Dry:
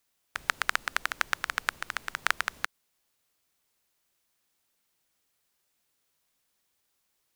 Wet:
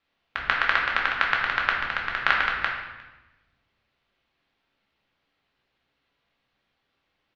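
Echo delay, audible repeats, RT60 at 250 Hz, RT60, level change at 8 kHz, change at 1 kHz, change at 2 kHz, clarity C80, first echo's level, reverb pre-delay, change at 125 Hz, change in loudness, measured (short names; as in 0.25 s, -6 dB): 0.356 s, 1, 1.5 s, 1.1 s, under -15 dB, +8.0 dB, +7.5 dB, 5.5 dB, -23.0 dB, 4 ms, +10.5 dB, +7.0 dB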